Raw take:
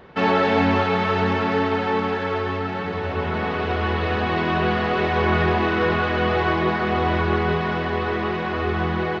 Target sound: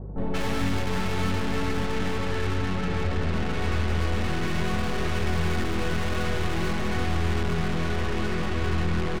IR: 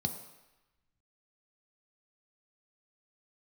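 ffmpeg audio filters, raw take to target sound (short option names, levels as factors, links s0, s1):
-filter_complex "[0:a]aeval=exprs='(tanh(50.1*val(0)+0.7)-tanh(0.7))/50.1':c=same,aeval=exprs='val(0)+0.00398*(sin(2*PI*50*n/s)+sin(2*PI*2*50*n/s)/2+sin(2*PI*3*50*n/s)/3+sin(2*PI*4*50*n/s)/4+sin(2*PI*5*50*n/s)/5)':c=same,bass=f=250:g=8,treble=f=4000:g=-2,acrossover=split=830[s0][s1];[s1]adelay=180[s2];[s0][s2]amix=inputs=2:normalize=0,volume=1.78"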